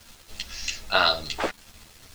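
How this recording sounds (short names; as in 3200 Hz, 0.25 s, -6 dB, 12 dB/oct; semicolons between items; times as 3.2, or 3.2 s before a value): a quantiser's noise floor 8-bit, dither none; a shimmering, thickened sound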